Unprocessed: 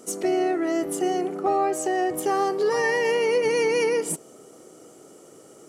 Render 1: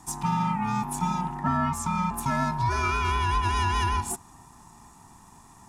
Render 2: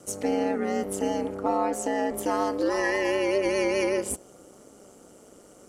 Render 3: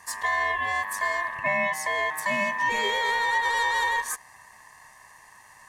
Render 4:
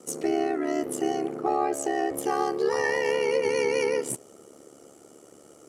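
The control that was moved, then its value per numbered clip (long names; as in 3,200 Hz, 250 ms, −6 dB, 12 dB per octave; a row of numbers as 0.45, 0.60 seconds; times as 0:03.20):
ring modulation, frequency: 540, 99, 1,400, 36 Hertz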